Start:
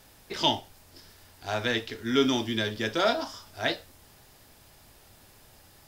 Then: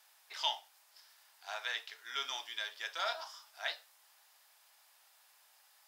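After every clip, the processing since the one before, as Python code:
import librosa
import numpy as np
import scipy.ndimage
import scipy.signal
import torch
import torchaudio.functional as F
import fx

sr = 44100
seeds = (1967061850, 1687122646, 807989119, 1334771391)

y = scipy.signal.sosfilt(scipy.signal.butter(4, 790.0, 'highpass', fs=sr, output='sos'), x)
y = y * librosa.db_to_amplitude(-8.0)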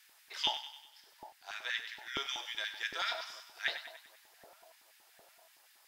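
y = fx.filter_lfo_highpass(x, sr, shape='square', hz=5.3, low_hz=330.0, high_hz=1900.0, q=1.8)
y = fx.rider(y, sr, range_db=5, speed_s=2.0)
y = fx.echo_split(y, sr, split_hz=910.0, low_ms=756, high_ms=97, feedback_pct=52, wet_db=-10.5)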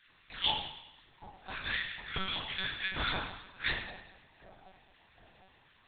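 y = fx.room_shoebox(x, sr, seeds[0], volume_m3=130.0, walls='mixed', distance_m=1.0)
y = fx.lpc_monotone(y, sr, seeds[1], pitch_hz=190.0, order=8)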